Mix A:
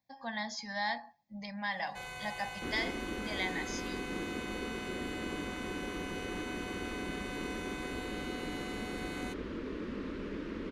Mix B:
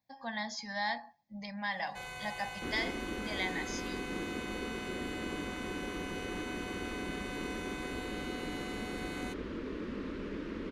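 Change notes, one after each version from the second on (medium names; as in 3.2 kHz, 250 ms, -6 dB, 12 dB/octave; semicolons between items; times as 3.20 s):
no change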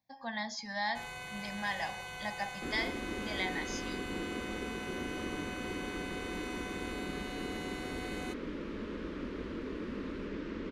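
first sound: entry -1.00 s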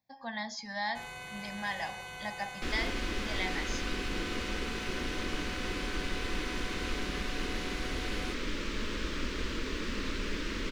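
second sound: remove band-pass filter 300 Hz, Q 0.5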